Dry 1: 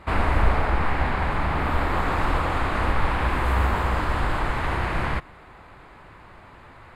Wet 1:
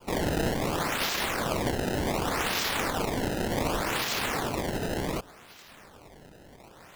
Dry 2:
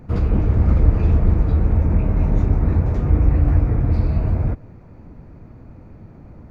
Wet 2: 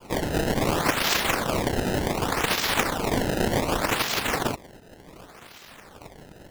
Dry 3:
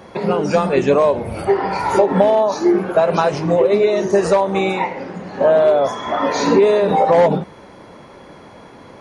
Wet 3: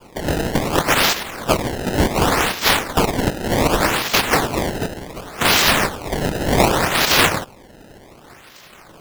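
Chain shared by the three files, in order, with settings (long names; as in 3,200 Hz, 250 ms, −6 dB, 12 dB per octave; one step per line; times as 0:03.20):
cochlear-implant simulation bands 1
sample-and-hold swept by an LFO 22×, swing 160% 0.67 Hz
level −3 dB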